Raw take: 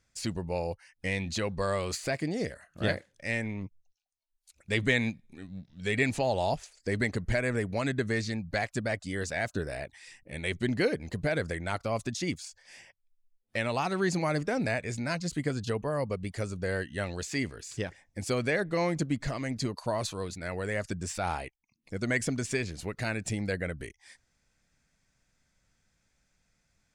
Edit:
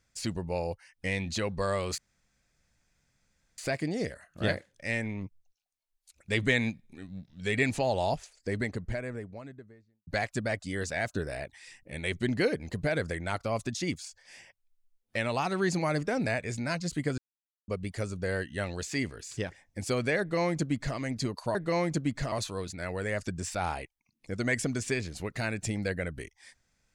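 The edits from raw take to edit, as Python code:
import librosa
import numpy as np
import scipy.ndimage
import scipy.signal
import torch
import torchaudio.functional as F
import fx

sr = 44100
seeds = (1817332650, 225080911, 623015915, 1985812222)

y = fx.studio_fade_out(x, sr, start_s=6.38, length_s=2.09)
y = fx.edit(y, sr, fx.insert_room_tone(at_s=1.98, length_s=1.6),
    fx.silence(start_s=15.58, length_s=0.5),
    fx.duplicate(start_s=18.6, length_s=0.77, to_s=19.95), tone=tone)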